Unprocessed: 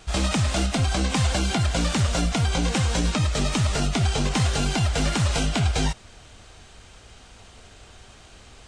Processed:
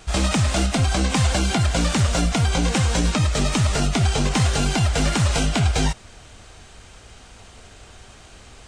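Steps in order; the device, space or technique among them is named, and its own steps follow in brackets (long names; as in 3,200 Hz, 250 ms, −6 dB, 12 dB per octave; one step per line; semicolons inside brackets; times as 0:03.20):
exciter from parts (in parallel at −12 dB: high-pass filter 4,300 Hz 6 dB per octave + soft clipping −27.5 dBFS, distortion −15 dB + high-pass filter 2,500 Hz 24 dB per octave)
on the sum: level +3 dB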